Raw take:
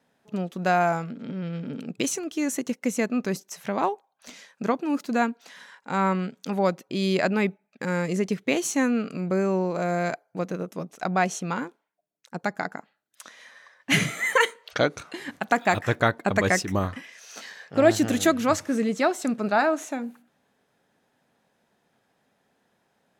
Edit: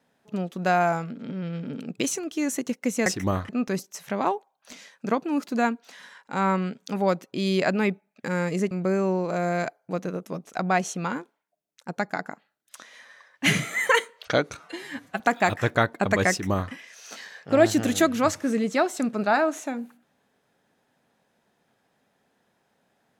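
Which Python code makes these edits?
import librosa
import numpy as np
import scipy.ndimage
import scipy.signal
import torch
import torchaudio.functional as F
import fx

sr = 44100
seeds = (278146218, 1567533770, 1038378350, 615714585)

y = fx.edit(x, sr, fx.cut(start_s=8.28, length_s=0.89),
    fx.stretch_span(start_s=15.03, length_s=0.42, factor=1.5),
    fx.duplicate(start_s=16.54, length_s=0.43, to_s=3.06), tone=tone)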